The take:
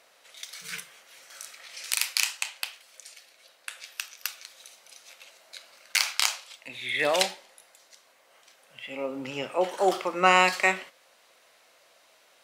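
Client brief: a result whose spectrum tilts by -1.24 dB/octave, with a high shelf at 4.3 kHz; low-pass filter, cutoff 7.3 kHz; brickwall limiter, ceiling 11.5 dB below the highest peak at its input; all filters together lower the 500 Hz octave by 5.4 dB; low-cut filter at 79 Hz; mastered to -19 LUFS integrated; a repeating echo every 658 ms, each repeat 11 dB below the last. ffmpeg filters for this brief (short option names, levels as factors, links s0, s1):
-af "highpass=79,lowpass=7300,equalizer=f=500:t=o:g=-7,highshelf=f=4300:g=4,alimiter=limit=0.178:level=0:latency=1,aecho=1:1:658|1316|1974:0.282|0.0789|0.0221,volume=5.01"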